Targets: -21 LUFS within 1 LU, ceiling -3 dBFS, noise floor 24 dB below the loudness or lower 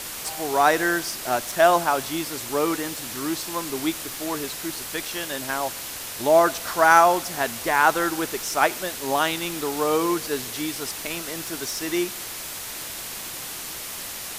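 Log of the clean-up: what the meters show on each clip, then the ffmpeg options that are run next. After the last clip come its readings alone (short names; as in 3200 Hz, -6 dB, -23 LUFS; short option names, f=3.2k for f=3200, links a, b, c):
noise floor -35 dBFS; noise floor target -48 dBFS; loudness -24.0 LUFS; peak -2.0 dBFS; loudness target -21.0 LUFS
-> -af "afftdn=nr=13:nf=-35"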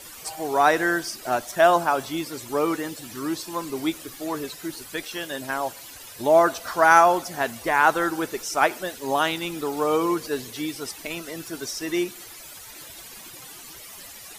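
noise floor -43 dBFS; noise floor target -48 dBFS
-> -af "afftdn=nr=6:nf=-43"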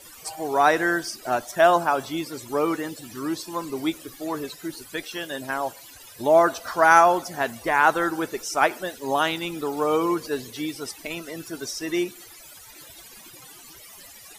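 noise floor -46 dBFS; noise floor target -48 dBFS
-> -af "afftdn=nr=6:nf=-46"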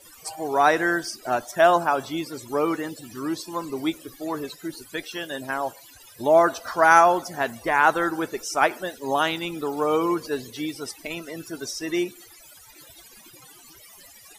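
noise floor -49 dBFS; loudness -24.0 LUFS; peak -2.0 dBFS; loudness target -21.0 LUFS
-> -af "volume=3dB,alimiter=limit=-3dB:level=0:latency=1"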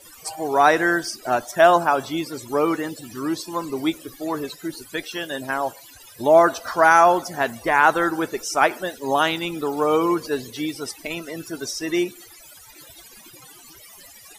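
loudness -21.5 LUFS; peak -3.0 dBFS; noise floor -46 dBFS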